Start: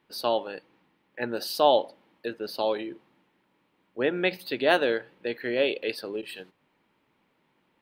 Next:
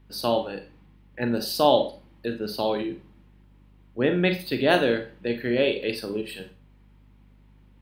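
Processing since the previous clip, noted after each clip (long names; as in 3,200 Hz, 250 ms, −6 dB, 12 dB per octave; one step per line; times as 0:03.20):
bass and treble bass +14 dB, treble +3 dB
four-comb reverb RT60 0.32 s, combs from 30 ms, DRR 6.5 dB
mains hum 50 Hz, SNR 28 dB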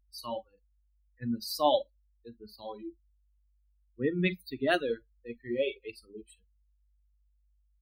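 spectral dynamics exaggerated over time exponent 3
level −2 dB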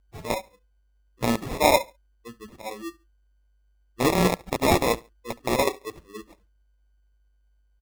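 loose part that buzzes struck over −41 dBFS, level −17 dBFS
decimation without filtering 29×
repeating echo 70 ms, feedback 28%, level −23 dB
level +6 dB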